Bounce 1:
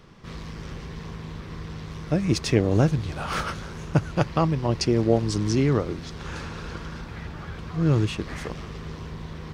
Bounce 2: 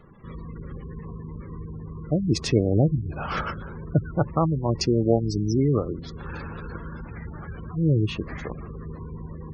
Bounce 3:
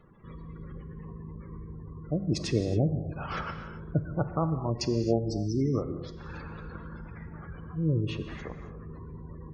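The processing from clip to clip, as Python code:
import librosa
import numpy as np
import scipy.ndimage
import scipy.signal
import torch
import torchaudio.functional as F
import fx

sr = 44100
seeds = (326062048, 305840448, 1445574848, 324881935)

y1 = fx.spec_gate(x, sr, threshold_db=-20, keep='strong')
y2 = fx.rev_gated(y1, sr, seeds[0], gate_ms=300, shape='flat', drr_db=8.0)
y2 = y2 * librosa.db_to_amplitude(-6.5)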